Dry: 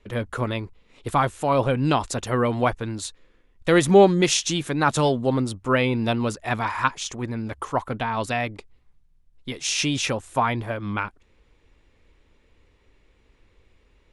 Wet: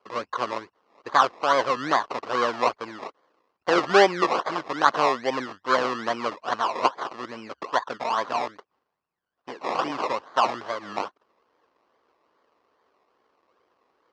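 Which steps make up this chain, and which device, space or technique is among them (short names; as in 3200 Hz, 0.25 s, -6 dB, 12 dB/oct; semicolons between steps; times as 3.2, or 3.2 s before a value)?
circuit-bent sampling toy (decimation with a swept rate 23×, swing 60% 2.4 Hz; speaker cabinet 460–4900 Hz, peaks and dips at 1100 Hz +7 dB, 2300 Hz -4 dB, 3600 Hz -6 dB)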